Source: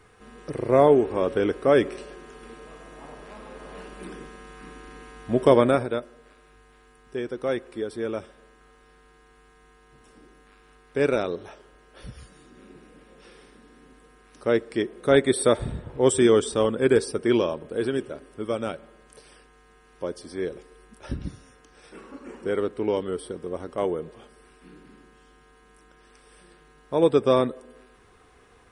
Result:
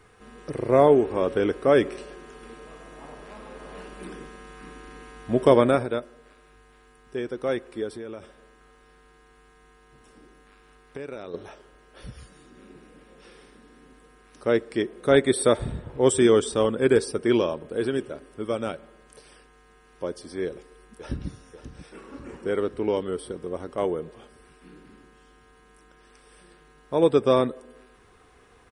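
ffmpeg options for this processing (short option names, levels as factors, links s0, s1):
-filter_complex "[0:a]asettb=1/sr,asplit=3[s0][s1][s2];[s0]atrim=end=7.954[s3];[s1]atrim=start=7.95:end=11.34,asetpts=PTS-STARTPTS,afade=t=in:d=0.004:c=qsin,afade=t=out:st=3.386:d=0.004:c=qsin,acompressor=threshold=0.0224:ratio=6:attack=3.2:release=140:knee=1:detection=peak[s4];[s2]atrim=start=11.336[s5];[s3][s4]acrossfade=d=0.004:c1=hsin:c2=qsin[s6];[s6][s5]acrossfade=d=0.004:c1=qsin:c2=hsin,asplit=2[s7][s8];[s8]afade=t=in:st=20.45:d=0.01,afade=t=out:st=21.29:d=0.01,aecho=0:1:540|1080|1620|2160|2700|3240|3780|4320:0.266073|0.172947|0.112416|0.0730702|0.0474956|0.0308721|0.0200669|0.0130435[s9];[s7][s9]amix=inputs=2:normalize=0"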